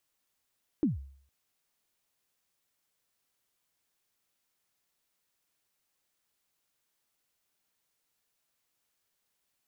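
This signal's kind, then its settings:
synth kick length 0.46 s, from 340 Hz, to 68 Hz, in 148 ms, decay 0.56 s, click off, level −20.5 dB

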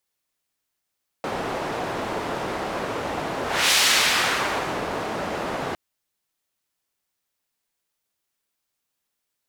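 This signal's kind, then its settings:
pass-by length 4.51 s, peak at 0:02.49, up 0.31 s, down 1.20 s, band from 650 Hz, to 3,900 Hz, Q 0.74, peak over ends 10.5 dB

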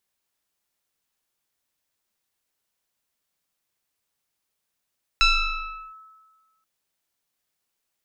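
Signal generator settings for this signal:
two-operator FM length 1.43 s, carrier 1,300 Hz, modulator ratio 1.02, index 2.6, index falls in 0.73 s linear, decay 1.48 s, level −12.5 dB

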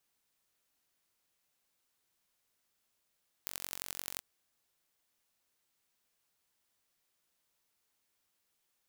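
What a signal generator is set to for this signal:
impulse train 45.8 per second, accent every 4, −9.5 dBFS 0.74 s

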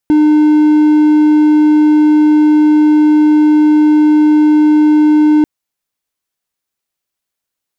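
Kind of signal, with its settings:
tone triangle 303 Hz −3 dBFS 5.34 s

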